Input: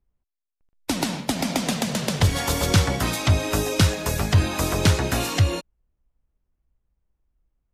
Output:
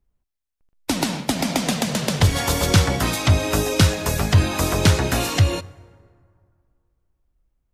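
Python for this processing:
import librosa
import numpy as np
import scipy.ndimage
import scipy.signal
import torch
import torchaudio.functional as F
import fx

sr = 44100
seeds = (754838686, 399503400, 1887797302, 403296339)

y = fx.rev_plate(x, sr, seeds[0], rt60_s=2.2, hf_ratio=0.5, predelay_ms=0, drr_db=19.5)
y = y * librosa.db_to_amplitude(2.5)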